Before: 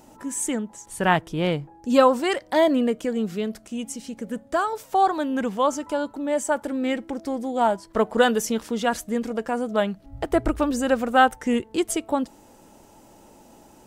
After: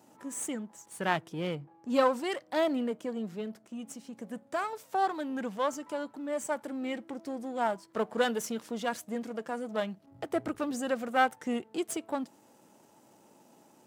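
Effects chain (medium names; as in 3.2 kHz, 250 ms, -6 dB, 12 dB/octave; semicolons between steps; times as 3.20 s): partial rectifier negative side -7 dB; high-pass 120 Hz 24 dB/octave; 1.55–4.13 s: tape noise reduction on one side only decoder only; trim -6.5 dB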